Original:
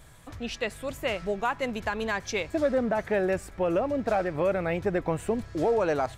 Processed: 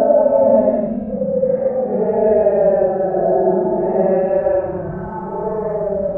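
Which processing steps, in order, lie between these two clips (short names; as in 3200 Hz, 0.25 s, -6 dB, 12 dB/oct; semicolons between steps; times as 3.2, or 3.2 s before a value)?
delay with a stepping band-pass 0.152 s, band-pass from 190 Hz, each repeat 1.4 oct, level -1 dB; low-pass sweep 480 Hz -> 8300 Hz, 2.75–5.7; Paulstretch 11×, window 0.05 s, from 2.93; gain +5 dB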